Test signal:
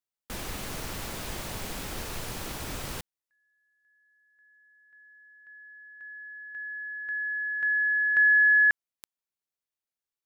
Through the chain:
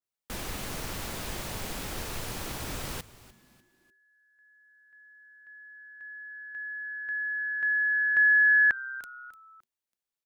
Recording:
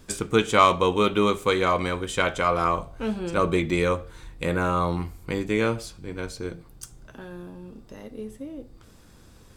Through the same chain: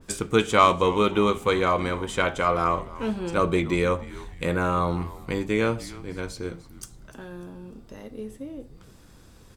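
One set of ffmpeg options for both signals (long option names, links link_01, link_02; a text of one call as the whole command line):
ffmpeg -i in.wav -filter_complex "[0:a]asplit=4[link_01][link_02][link_03][link_04];[link_02]adelay=298,afreqshift=-130,volume=-18dB[link_05];[link_03]adelay=596,afreqshift=-260,volume=-26.2dB[link_06];[link_04]adelay=894,afreqshift=-390,volume=-34.4dB[link_07];[link_01][link_05][link_06][link_07]amix=inputs=4:normalize=0,adynamicequalizer=threshold=0.0141:dfrequency=2200:dqfactor=0.7:tfrequency=2200:tqfactor=0.7:attack=5:release=100:ratio=0.375:range=1.5:mode=cutabove:tftype=highshelf" out.wav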